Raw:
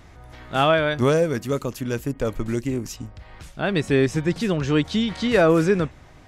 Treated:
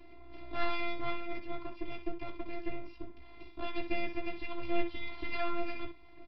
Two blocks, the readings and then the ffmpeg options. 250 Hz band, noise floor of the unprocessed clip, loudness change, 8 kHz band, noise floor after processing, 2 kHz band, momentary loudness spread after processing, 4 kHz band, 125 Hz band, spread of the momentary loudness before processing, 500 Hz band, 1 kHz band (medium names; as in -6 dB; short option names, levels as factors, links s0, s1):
-18.5 dB, -47 dBFS, -17.5 dB, under -40 dB, -52 dBFS, -13.5 dB, 14 LU, -16.0 dB, -27.0 dB, 11 LU, -20.0 dB, -13.0 dB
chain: -filter_complex "[0:a]acrossover=split=2600[s0][s1];[s1]acompressor=threshold=0.00562:ratio=4:attack=1:release=60[s2];[s0][s2]amix=inputs=2:normalize=0,bass=f=250:g=8,treble=f=4000:g=11,acrossover=split=110|660|1700[s3][s4][s5][s6];[s4]acompressor=threshold=0.02:ratio=6[s7];[s3][s7][s5][s6]amix=inputs=4:normalize=0,asplit=3[s8][s9][s10];[s8]bandpass=f=300:t=q:w=8,volume=1[s11];[s9]bandpass=f=870:t=q:w=8,volume=0.501[s12];[s10]bandpass=f=2240:t=q:w=8,volume=0.355[s13];[s11][s12][s13]amix=inputs=3:normalize=0,aeval=exprs='max(val(0),0)':c=same,afftfilt=real='hypot(re,im)*cos(PI*b)':imag='0':win_size=512:overlap=0.75,aecho=1:1:16|63:0.531|0.316,aresample=11025,aresample=44100,volume=3.98"